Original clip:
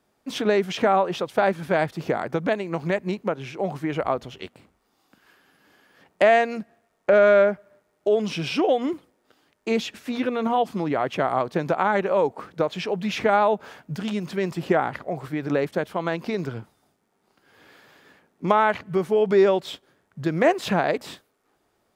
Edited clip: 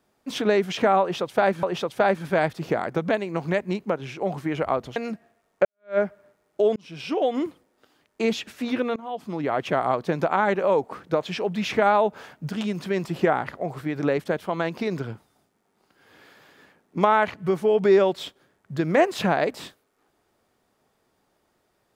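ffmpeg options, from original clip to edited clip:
-filter_complex "[0:a]asplit=6[a][b][c][d][e][f];[a]atrim=end=1.632[g];[b]atrim=start=1.008:end=4.342[h];[c]atrim=start=6.428:end=7.12,asetpts=PTS-STARTPTS,afade=t=out:st=0.688:d=0.004:c=hsin[i];[d]atrim=start=7.12:end=8.23,asetpts=PTS-STARTPTS,afade=t=in:d=0.33:c=exp,afade=t=out:st=1.106:d=0.004:c=hsin[j];[e]atrim=start=8.23:end=10.43,asetpts=PTS-STARTPTS,afade=t=in:d=0.63,afade=t=out:st=2.196:d=0.004:c=hsin:silence=0.0630957[k];[f]atrim=start=10.43,asetpts=PTS-STARTPTS,afade=t=in:d=0.63:silence=0.0630957[l];[g][h]acrossfade=d=0.004:c1=hsin:c2=hsin[m];[i][j][k][l]concat=n=4:v=0:a=1[n];[m][n]acrossfade=d=0.004:c1=hsin:c2=hsin"

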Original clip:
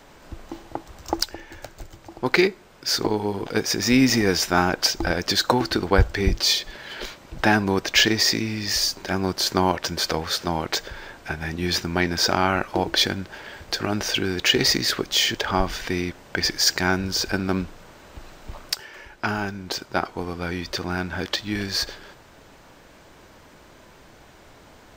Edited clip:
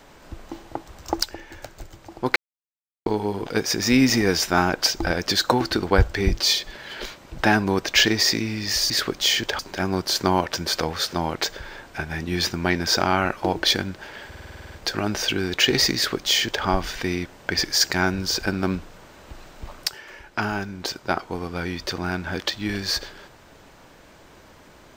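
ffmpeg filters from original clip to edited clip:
-filter_complex "[0:a]asplit=14[a][b][c][d][e][f][g][h][i][j][k][l][m][n];[a]atrim=end=2.36,asetpts=PTS-STARTPTS,afade=t=out:st=2.356:d=0.004:c=hsin[o];[b]atrim=start=2.36:end=3.06,asetpts=PTS-STARTPTS,volume=0[p];[c]atrim=start=3.06:end=8.902,asetpts=PTS-STARTPTS,afade=t=in:d=0.004:c=hsin[q];[d]atrim=start=14.808:end=15.502[r];[e]atrim=start=8.898:end=13.632[s];[f]atrim=start=13.578:end=13.632[t];[g]atrim=start=13.578:end=13.632[u];[h]atrim=start=13.578:end=13.632[v];[i]atrim=start=13.578:end=13.632[w];[j]atrim=start=13.578:end=13.632[x];[k]atrim=start=13.578:end=13.632[y];[l]atrim=start=13.578:end=13.632[z];[m]atrim=start=13.578:end=13.632[aa];[n]atrim=start=13.578[ab];[o][p][q]concat=n=3:v=0:a=1[ac];[ac][r]acrossfade=d=0.004:c1=hsin:c2=hsin[ad];[ad][s]acrossfade=d=0.004:c1=hsin:c2=hsin[ae];[ae][t]acrossfade=d=0.004:c1=hsin:c2=hsin[af];[af][u]acrossfade=d=0.004:c1=hsin:c2=hsin[ag];[ag][v]acrossfade=d=0.004:c1=hsin:c2=hsin[ah];[ah][w]acrossfade=d=0.004:c1=hsin:c2=hsin[ai];[ai][x]acrossfade=d=0.004:c1=hsin:c2=hsin[aj];[aj][y]acrossfade=d=0.004:c1=hsin:c2=hsin[ak];[ak][z]acrossfade=d=0.004:c1=hsin:c2=hsin[al];[al][aa]acrossfade=d=0.004:c1=hsin:c2=hsin[am];[am][ab]acrossfade=d=0.004:c1=hsin:c2=hsin"

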